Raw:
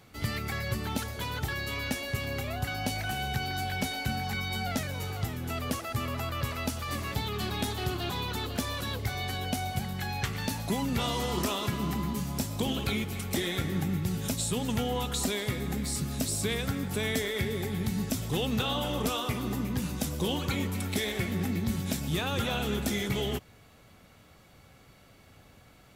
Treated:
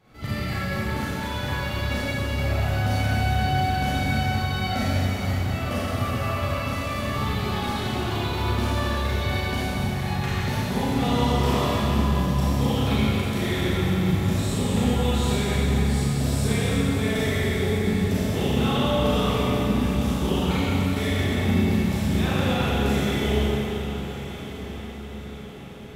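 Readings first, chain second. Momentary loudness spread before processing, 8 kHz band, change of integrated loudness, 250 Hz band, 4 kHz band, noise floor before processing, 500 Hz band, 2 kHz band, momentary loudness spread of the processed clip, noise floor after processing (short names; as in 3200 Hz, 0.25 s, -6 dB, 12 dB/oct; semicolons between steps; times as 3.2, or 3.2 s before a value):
4 LU, -0.5 dB, +7.5 dB, +8.5 dB, +3.5 dB, -57 dBFS, +8.0 dB, +6.0 dB, 6 LU, -35 dBFS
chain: high shelf 4000 Hz -11 dB; tremolo saw up 7.5 Hz, depth 50%; on a send: diffused feedback echo 1.285 s, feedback 48%, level -12 dB; on the sum: Schroeder reverb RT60 3.1 s, combs from 29 ms, DRR -10 dB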